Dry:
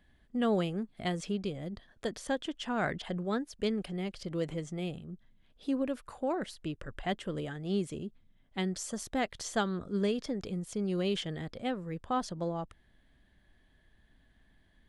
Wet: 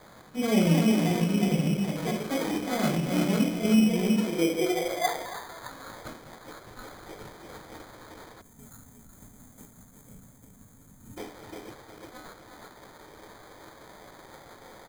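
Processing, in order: switching spikes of -28 dBFS; feedback echo 0.359 s, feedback 24%, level -8 dB; echoes that change speed 0.338 s, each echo +5 st, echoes 3, each echo -6 dB; limiter -24 dBFS, peak gain reduction 8 dB; high-pass sweep 160 Hz -> 3200 Hz, 3.78–6.44; de-esser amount 70%; air absorption 51 m; shoebox room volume 250 m³, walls furnished, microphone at 5.2 m; sample-and-hold 16×; spectral gain 8.41–11.18, 280–6200 Hz -17 dB; gain -5 dB

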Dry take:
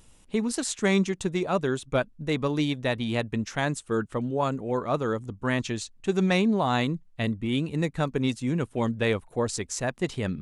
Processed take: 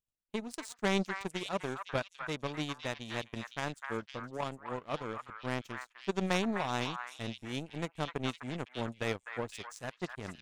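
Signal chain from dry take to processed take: power-law curve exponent 2; delay with a stepping band-pass 0.254 s, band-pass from 1400 Hz, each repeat 1.4 oct, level -1 dB; gain -2 dB

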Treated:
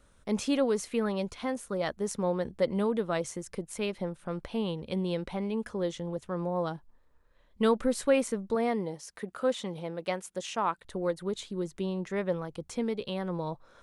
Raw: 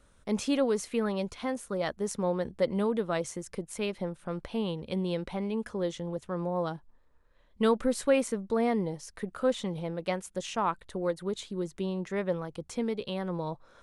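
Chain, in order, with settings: 8.55–10.85 HPF 230 Hz 6 dB/oct

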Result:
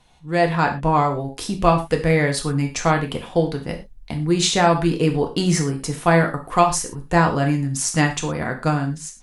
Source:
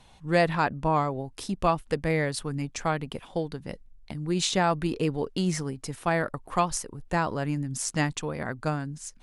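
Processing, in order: AGC gain up to 11.5 dB; non-linear reverb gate 0.14 s falling, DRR 3 dB; gain -2.5 dB

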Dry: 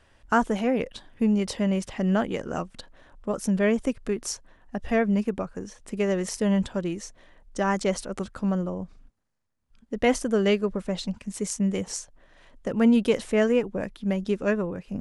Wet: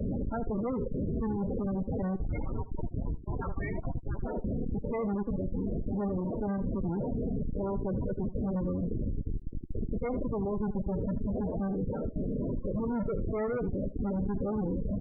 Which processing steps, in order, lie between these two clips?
per-bin compression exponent 0.2; 2.16–4.19 HPF 790 Hz 24 dB/oct; gate with hold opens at -15 dBFS; spectral noise reduction 12 dB; compressor 12:1, threshold -24 dBFS, peak gain reduction 11.5 dB; Schmitt trigger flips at -29 dBFS; vibrato 12 Hz 6.5 cents; loudest bins only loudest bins 16; echo 79 ms -16 dB

